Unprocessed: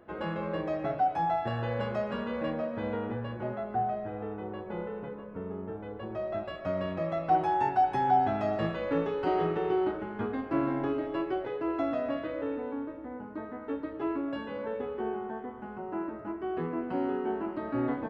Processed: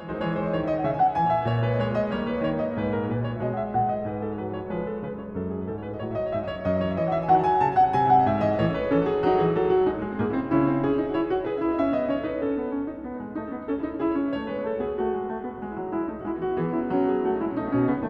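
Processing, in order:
low-shelf EQ 240 Hz +5.5 dB
echo ahead of the sound 215 ms −12.5 dB
level +5 dB

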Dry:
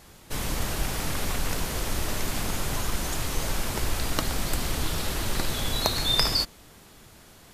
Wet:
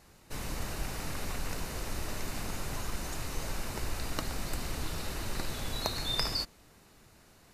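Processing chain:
high-shelf EQ 8,600 Hz −4 dB
notch filter 3,300 Hz, Q 9
level −7.5 dB

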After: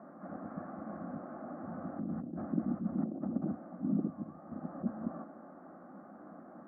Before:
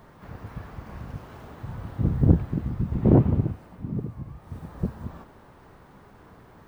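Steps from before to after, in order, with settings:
Chebyshev low-pass filter 1,100 Hz, order 3
compressor whose output falls as the input rises −28 dBFS, ratio −1
high-pass filter 160 Hz 24 dB per octave
phaser with its sweep stopped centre 640 Hz, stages 8
level +1 dB

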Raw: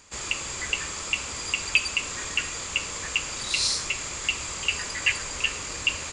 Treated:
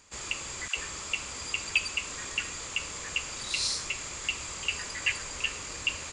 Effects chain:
0:00.68–0:03.23: all-pass dispersion lows, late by 88 ms, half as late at 630 Hz
level −5 dB

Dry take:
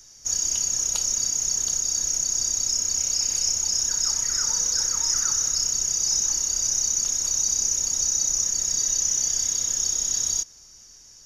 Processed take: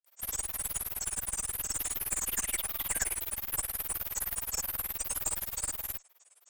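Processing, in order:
high-frequency loss of the air 75 metres
granular cloud, grains 11 per second, pitch spread up and down by 7 semitones
high-pass filter 320 Hz 24 dB per octave
high-shelf EQ 6,500 Hz −9 dB
notch filter 2,400 Hz, Q 20
wrong playback speed 45 rpm record played at 78 rpm
asymmetric clip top −42 dBFS
expander for the loud parts 1.5 to 1, over −52 dBFS
level +7.5 dB

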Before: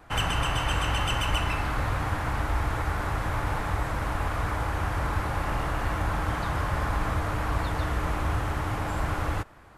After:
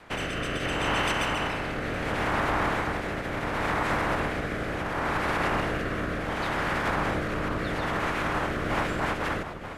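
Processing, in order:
ceiling on every frequency bin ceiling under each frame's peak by 20 dB
low-pass filter 2,500 Hz 6 dB per octave
brickwall limiter −23 dBFS, peak gain reduction 9.5 dB
delay that swaps between a low-pass and a high-pass 431 ms, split 1,100 Hz, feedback 74%, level −11 dB
rotating-speaker cabinet horn 0.7 Hz, later 5 Hz, at 0:08.26
level +6 dB

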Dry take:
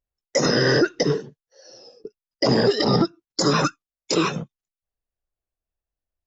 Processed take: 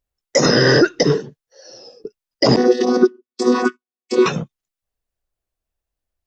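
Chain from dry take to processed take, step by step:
0:02.56–0:04.26: channel vocoder with a chord as carrier bare fifth, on B3
level +5.5 dB

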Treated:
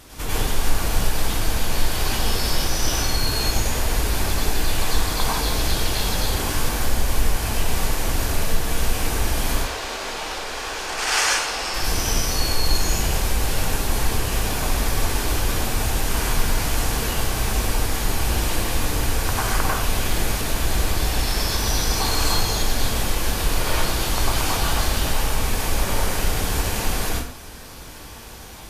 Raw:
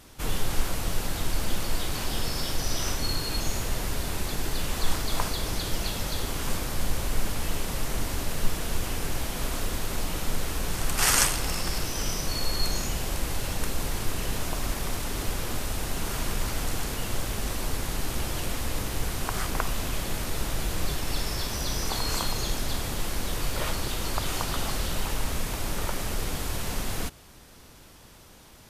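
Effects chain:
parametric band 190 Hz −6.5 dB 0.44 octaves
downward compressor 1.5 to 1, threshold −36 dBFS, peak gain reduction 8 dB
0:09.52–0:11.74: three-way crossover with the lows and the highs turned down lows −19 dB, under 370 Hz, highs −17 dB, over 7,200 Hz
dense smooth reverb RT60 0.57 s, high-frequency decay 0.75×, pre-delay 85 ms, DRR −6 dB
level +5.5 dB

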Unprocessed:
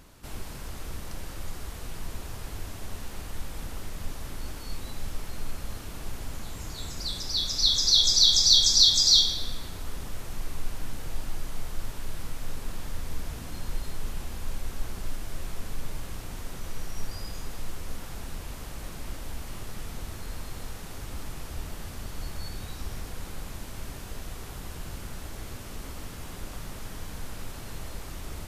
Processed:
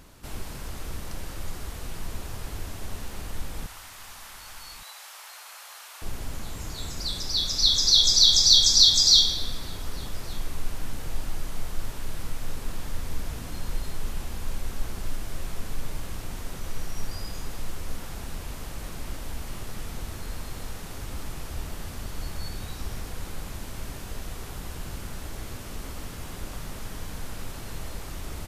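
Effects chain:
0:03.66–0:06.02: high-pass filter 790 Hz 24 dB per octave
slap from a distant wall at 200 metres, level −17 dB
level +2 dB

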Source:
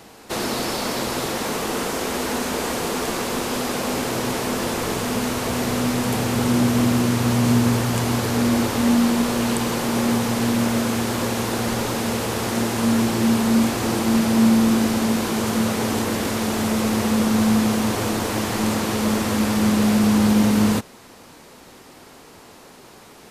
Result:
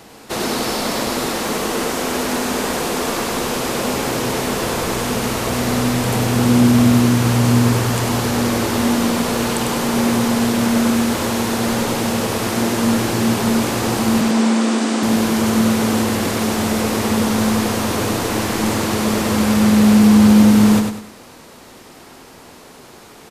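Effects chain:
0:14.21–0:15.03: elliptic band-pass filter 240–8,500 Hz, stop band 40 dB
repeating echo 99 ms, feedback 36%, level −5 dB
level +2.5 dB

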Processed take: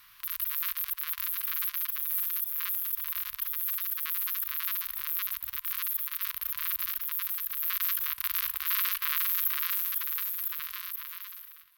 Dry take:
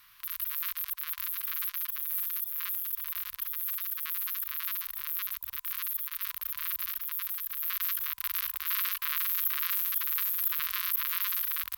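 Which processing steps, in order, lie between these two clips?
fade-out on the ending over 2.61 s
feedback echo with a swinging delay time 216 ms, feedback 64%, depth 130 cents, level −20 dB
level +2 dB

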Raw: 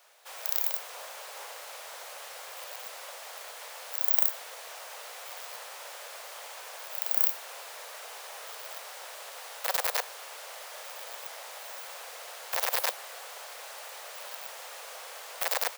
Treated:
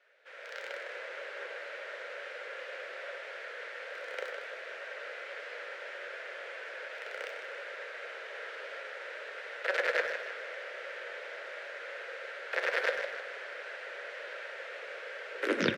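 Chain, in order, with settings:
turntable brake at the end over 0.46 s
Chebyshev band-pass filter 220–1,800 Hz, order 2
flat-topped bell 910 Hz −15.5 dB 1 octave
far-end echo of a speakerphone 100 ms, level −9 dB
on a send at −7 dB: convolution reverb, pre-delay 4 ms
on the sum: automatic gain control gain up to 6.5 dB
feedback echo with a swinging delay time 155 ms, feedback 49%, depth 90 cents, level −9 dB

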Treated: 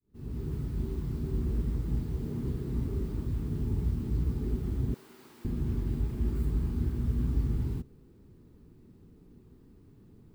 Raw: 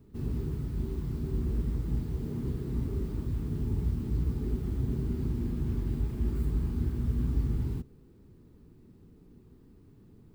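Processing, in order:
fade in at the beginning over 0.56 s
0:04.94–0:05.45: high-pass filter 850 Hz 12 dB per octave

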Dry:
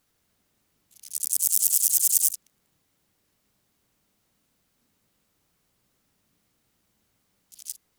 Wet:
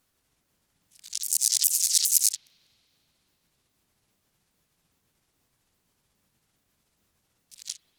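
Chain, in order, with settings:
pitch shifter swept by a sawtooth −9 semitones, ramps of 410 ms
spring reverb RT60 3.2 s, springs 39 ms, chirp 60 ms, DRR 18.5 dB

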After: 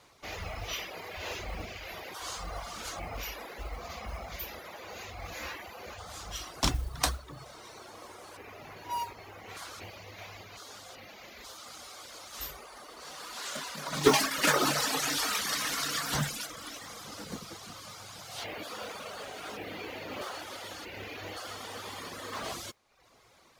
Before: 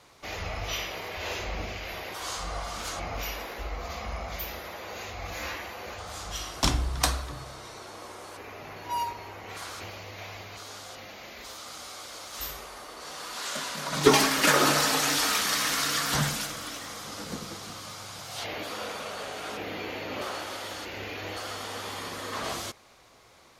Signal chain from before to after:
reverb reduction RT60 0.73 s
noise that follows the level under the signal 24 dB
level −3 dB

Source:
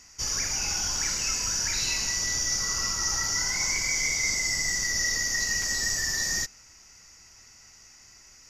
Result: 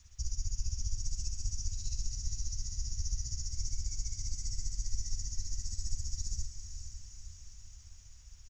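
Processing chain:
Chebyshev band-stop filter 120–7,000 Hz, order 3
high-shelf EQ 5,800 Hz −10.5 dB
comb filter 3.6 ms, depth 78%
downward compressor, threshold −35 dBFS, peak gain reduction 8 dB
amplitude tremolo 15 Hz, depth 78%
background noise blue −69 dBFS
high-frequency loss of the air 160 metres
feedback delay with all-pass diffusion 498 ms, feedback 59%, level −8.5 dB
level +10.5 dB

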